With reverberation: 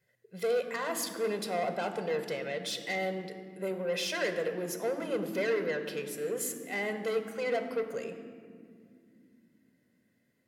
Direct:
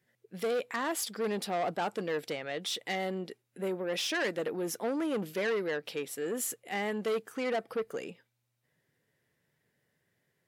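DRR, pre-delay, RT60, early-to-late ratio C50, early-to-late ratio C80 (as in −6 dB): 7.0 dB, 3 ms, 2.4 s, 9.0 dB, 10.0 dB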